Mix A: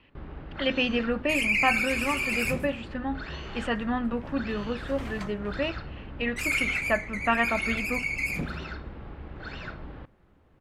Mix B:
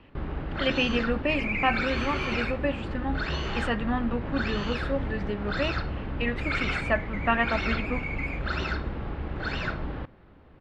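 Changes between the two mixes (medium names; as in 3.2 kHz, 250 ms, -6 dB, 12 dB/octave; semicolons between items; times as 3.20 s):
first sound +8.0 dB; second sound: add ladder band-pass 2.2 kHz, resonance 55%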